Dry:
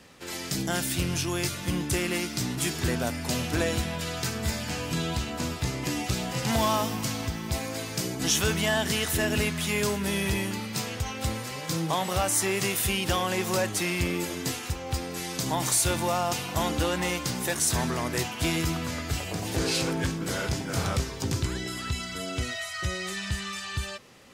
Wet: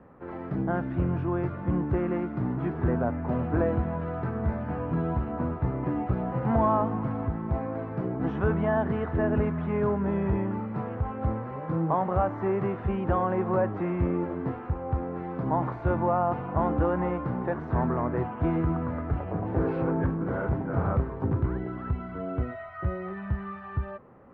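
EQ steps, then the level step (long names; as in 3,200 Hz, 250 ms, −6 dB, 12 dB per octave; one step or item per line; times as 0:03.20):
low-pass filter 1,300 Hz 24 dB per octave
+2.5 dB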